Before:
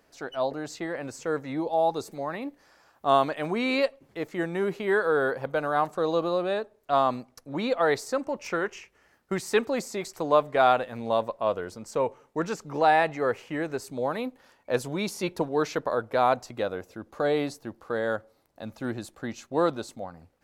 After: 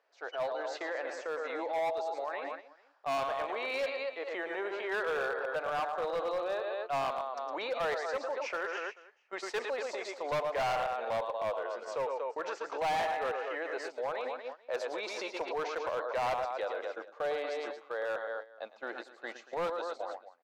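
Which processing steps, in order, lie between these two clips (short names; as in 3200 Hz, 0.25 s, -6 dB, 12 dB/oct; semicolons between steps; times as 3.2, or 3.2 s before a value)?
HPF 490 Hz 24 dB/oct; air absorption 170 m; on a send: tapped delay 0.104/0.112/0.238/0.437 s -18/-8.5/-10.5/-19 dB; on the sum: hard clip -24 dBFS, distortion -8 dB; limiter -32.5 dBFS, peak gain reduction 8.5 dB; gate -44 dBFS, range -11 dB; gain +4 dB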